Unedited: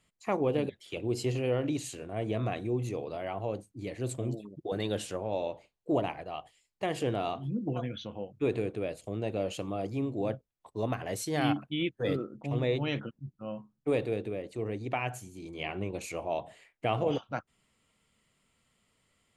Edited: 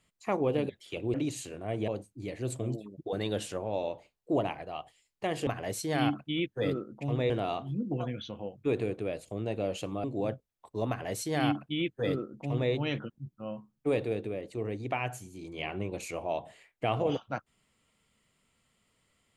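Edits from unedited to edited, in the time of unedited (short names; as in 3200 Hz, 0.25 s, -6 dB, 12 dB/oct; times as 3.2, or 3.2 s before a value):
1.14–1.62 cut
2.36–3.47 cut
9.8–10.05 cut
10.9–12.73 copy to 7.06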